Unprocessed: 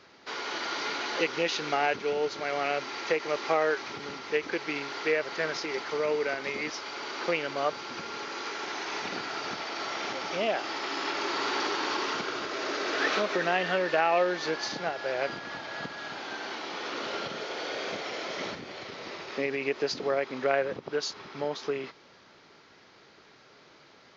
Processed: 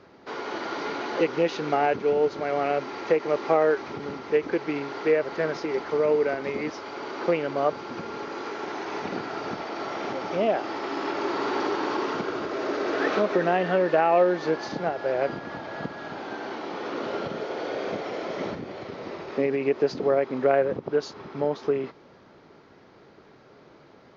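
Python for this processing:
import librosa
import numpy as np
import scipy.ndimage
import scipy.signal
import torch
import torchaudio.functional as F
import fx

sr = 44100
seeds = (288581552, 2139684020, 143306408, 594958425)

y = fx.tilt_shelf(x, sr, db=8.5, hz=1400.0)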